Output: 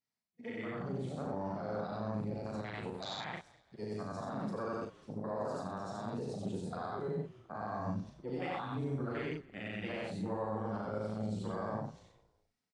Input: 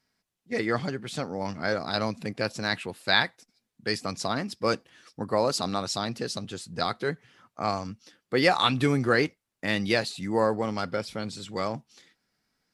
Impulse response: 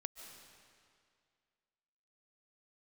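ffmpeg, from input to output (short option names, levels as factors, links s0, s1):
-filter_complex "[0:a]afftfilt=real='re':imag='-im':win_size=8192:overlap=0.75,areverse,acompressor=threshold=0.0141:ratio=8,areverse,equalizer=f=315:t=o:w=0.33:g=-5,equalizer=f=500:t=o:w=0.33:g=-4,equalizer=f=1600:t=o:w=0.33:g=-9,equalizer=f=5000:t=o:w=0.33:g=-5,alimiter=level_in=4.73:limit=0.0631:level=0:latency=1:release=98,volume=0.211,afwtdn=0.00316,highpass=f=82:w=0.5412,highpass=f=82:w=1.3066,asplit=2[s0][s1];[s1]adelay=38,volume=0.631[s2];[s0][s2]amix=inputs=2:normalize=0,asplit=2[s3][s4];[s4]asplit=3[s5][s6][s7];[s5]adelay=203,afreqshift=-43,volume=0.0794[s8];[s6]adelay=406,afreqshift=-86,volume=0.0316[s9];[s7]adelay=609,afreqshift=-129,volume=0.0127[s10];[s8][s9][s10]amix=inputs=3:normalize=0[s11];[s3][s11]amix=inputs=2:normalize=0,dynaudnorm=f=680:g=3:m=1.68,volume=1.68" -ar 22050 -c:a aac -b:a 48k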